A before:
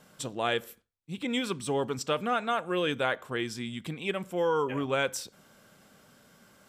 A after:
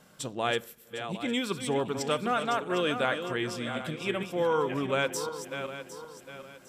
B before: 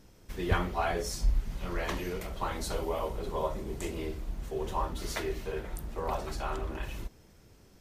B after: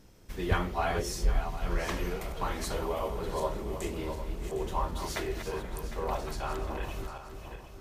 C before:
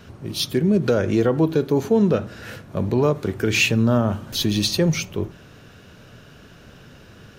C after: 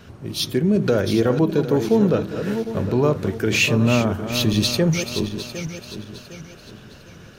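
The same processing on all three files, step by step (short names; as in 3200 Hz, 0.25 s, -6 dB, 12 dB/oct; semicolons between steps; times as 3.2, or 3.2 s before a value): regenerating reverse delay 0.378 s, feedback 59%, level -8.5 dB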